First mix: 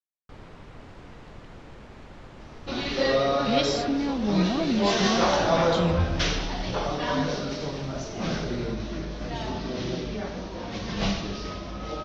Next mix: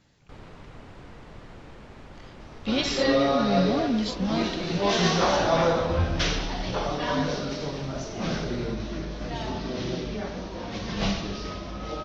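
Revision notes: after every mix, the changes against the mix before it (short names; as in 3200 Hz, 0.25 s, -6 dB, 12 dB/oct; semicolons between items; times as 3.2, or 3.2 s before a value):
speech: entry -0.80 s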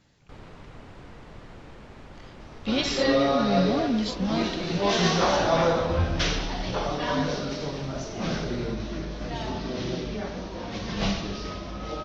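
none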